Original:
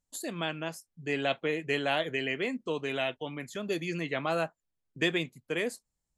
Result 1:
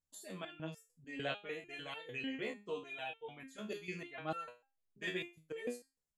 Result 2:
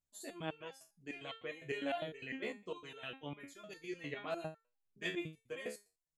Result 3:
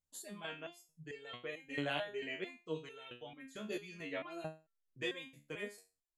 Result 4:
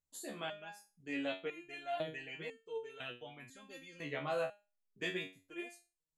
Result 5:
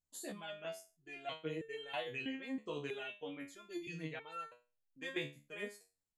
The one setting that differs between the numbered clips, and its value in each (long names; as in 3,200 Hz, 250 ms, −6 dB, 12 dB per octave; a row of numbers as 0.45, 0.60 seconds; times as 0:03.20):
step-sequenced resonator, speed: 6.7, 9.9, 4.5, 2, 3.1 Hertz